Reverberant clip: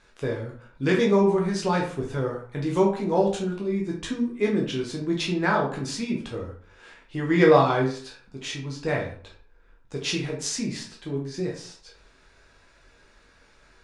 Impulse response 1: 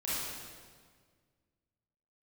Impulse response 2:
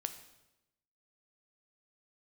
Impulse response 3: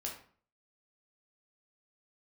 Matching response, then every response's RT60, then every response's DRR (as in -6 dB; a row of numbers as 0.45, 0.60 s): 3; 1.7, 0.95, 0.45 s; -10.0, 8.0, -1.5 dB